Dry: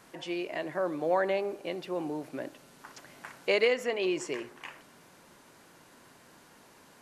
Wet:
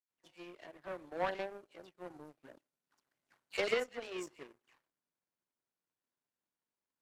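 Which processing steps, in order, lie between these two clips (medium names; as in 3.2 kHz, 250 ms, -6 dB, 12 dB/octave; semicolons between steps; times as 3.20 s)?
phase dispersion lows, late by 102 ms, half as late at 2.3 kHz; power-law waveshaper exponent 2; trim -2.5 dB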